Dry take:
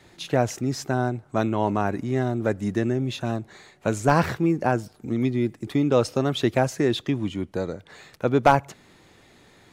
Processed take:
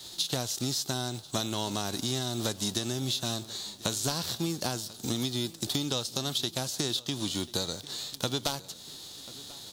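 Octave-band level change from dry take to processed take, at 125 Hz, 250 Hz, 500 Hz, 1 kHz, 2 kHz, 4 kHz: -9.0 dB, -10.0 dB, -13.0 dB, -13.5 dB, -10.5 dB, +7.0 dB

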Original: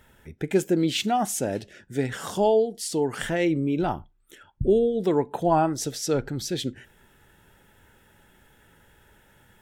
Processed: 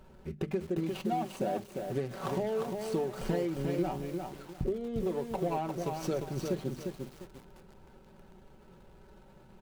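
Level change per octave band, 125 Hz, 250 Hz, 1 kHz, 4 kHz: -5.5 dB, -8.5 dB, -9.5 dB, -14.5 dB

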